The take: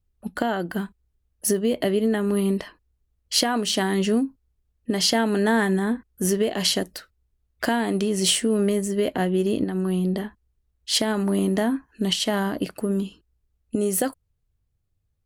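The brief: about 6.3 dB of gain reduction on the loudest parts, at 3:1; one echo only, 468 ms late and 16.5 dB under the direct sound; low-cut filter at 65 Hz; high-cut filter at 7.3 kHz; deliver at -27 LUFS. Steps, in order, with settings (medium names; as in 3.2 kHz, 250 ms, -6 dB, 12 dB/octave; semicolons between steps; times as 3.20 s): high-pass 65 Hz; low-pass 7.3 kHz; compression 3:1, threshold -26 dBFS; delay 468 ms -16.5 dB; trim +2 dB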